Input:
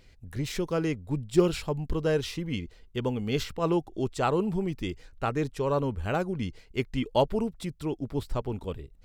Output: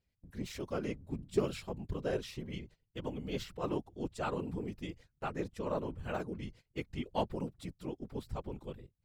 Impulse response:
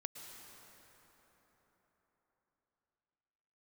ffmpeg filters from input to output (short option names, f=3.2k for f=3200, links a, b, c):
-af "afftfilt=real='hypot(re,im)*cos(2*PI*random(0))':imag='hypot(re,im)*sin(2*PI*random(1))':win_size=512:overlap=0.75,aeval=exprs='0.211*(cos(1*acos(clip(val(0)/0.211,-1,1)))-cos(1*PI/2))+0.0119*(cos(3*acos(clip(val(0)/0.211,-1,1)))-cos(3*PI/2))+0.00944*(cos(5*acos(clip(val(0)/0.211,-1,1)))-cos(5*PI/2))+0.00668*(cos(7*acos(clip(val(0)/0.211,-1,1)))-cos(7*PI/2))':c=same,agate=range=-16dB:threshold=-52dB:ratio=16:detection=peak,volume=-2.5dB"